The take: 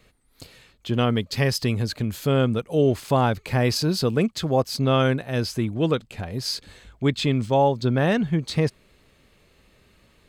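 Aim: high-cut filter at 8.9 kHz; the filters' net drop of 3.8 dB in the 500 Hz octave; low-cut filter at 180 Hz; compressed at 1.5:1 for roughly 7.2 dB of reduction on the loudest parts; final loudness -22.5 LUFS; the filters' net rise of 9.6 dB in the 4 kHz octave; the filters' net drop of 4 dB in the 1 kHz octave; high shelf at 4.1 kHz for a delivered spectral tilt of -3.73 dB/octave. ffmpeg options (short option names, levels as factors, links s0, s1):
-af "highpass=180,lowpass=8900,equalizer=f=500:t=o:g=-3.5,equalizer=f=1000:t=o:g=-5,equalizer=f=4000:t=o:g=8,highshelf=f=4100:g=7,acompressor=threshold=0.0178:ratio=1.5,volume=2"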